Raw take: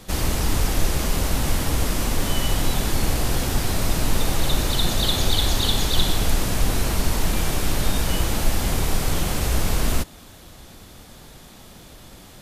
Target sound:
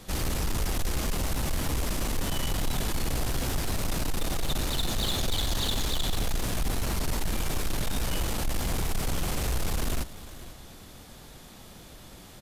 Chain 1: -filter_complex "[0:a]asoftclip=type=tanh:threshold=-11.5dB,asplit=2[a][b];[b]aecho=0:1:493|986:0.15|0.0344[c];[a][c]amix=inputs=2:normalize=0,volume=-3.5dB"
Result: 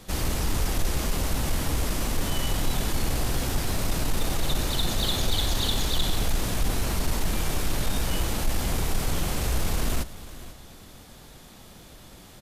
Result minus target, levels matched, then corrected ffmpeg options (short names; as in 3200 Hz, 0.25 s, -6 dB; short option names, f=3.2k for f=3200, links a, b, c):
soft clip: distortion -9 dB
-filter_complex "[0:a]asoftclip=type=tanh:threshold=-19dB,asplit=2[a][b];[b]aecho=0:1:493|986:0.15|0.0344[c];[a][c]amix=inputs=2:normalize=0,volume=-3.5dB"